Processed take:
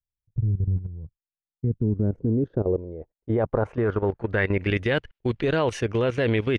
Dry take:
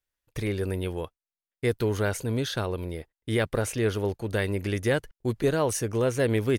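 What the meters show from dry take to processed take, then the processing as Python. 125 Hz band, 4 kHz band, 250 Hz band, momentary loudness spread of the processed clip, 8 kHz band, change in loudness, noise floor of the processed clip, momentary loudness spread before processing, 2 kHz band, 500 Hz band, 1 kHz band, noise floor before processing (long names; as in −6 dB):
+4.0 dB, −1.0 dB, +3.0 dB, 7 LU, below −10 dB, +2.5 dB, below −85 dBFS, 8 LU, +3.0 dB, +1.5 dB, +2.0 dB, below −85 dBFS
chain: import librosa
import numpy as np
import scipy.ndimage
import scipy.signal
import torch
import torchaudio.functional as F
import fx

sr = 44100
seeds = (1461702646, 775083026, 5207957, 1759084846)

y = fx.filter_sweep_lowpass(x, sr, from_hz=120.0, to_hz=2900.0, start_s=1.18, end_s=4.87, q=1.8)
y = fx.level_steps(y, sr, step_db=14)
y = F.gain(torch.from_numpy(y), 6.5).numpy()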